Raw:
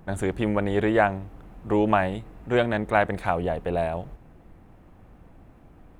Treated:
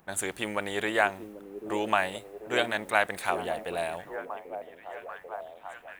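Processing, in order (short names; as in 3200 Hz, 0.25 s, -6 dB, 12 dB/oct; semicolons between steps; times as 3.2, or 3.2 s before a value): tilt +4.5 dB/oct; delay with a stepping band-pass 0.79 s, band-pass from 320 Hz, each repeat 0.7 oct, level -5.5 dB; mismatched tape noise reduction decoder only; gain -3 dB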